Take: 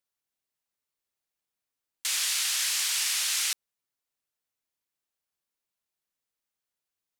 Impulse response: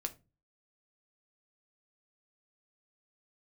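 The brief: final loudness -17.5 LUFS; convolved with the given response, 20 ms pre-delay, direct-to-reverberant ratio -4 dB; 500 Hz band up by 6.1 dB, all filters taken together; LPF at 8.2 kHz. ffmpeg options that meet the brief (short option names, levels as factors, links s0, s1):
-filter_complex "[0:a]lowpass=8200,equalizer=f=500:t=o:g=8,asplit=2[s0][s1];[1:a]atrim=start_sample=2205,adelay=20[s2];[s1][s2]afir=irnorm=-1:irlink=0,volume=1.68[s3];[s0][s3]amix=inputs=2:normalize=0,volume=1.68"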